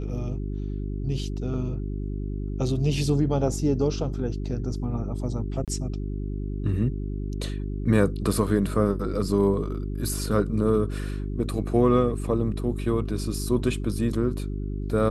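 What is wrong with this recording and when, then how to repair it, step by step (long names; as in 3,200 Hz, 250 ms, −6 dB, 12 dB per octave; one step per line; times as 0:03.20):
mains hum 50 Hz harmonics 8 −30 dBFS
0:05.65–0:05.68: drop-out 27 ms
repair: hum removal 50 Hz, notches 8
repair the gap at 0:05.65, 27 ms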